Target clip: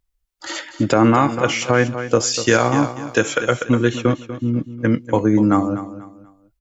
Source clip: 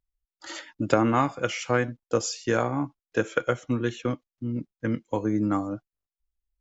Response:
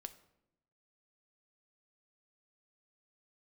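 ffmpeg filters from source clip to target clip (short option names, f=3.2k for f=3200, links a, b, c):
-filter_complex "[0:a]asettb=1/sr,asplit=3[a][b][c];[a]atrim=end=2.344[d];[b]atrim=start=2.34:end=3.51,asetpts=PTS-STARTPTS,afade=t=in:d=0.004:c=qsin,afade=t=out:st=1.166:d=0.004:c=qsin,highshelf=f=2.2k:g=10[e];[c]atrim=start=3.506[f];[d][e]acrossfade=d=0.004:c1=hsin:c2=qsin[g];[g][f]acrossfade=d=0.004:c1=qsin:c2=hsin,aecho=1:1:243|486|729:0.224|0.0694|0.0215,alimiter=level_in=12dB:limit=-1dB:release=50:level=0:latency=1,volume=-2dB"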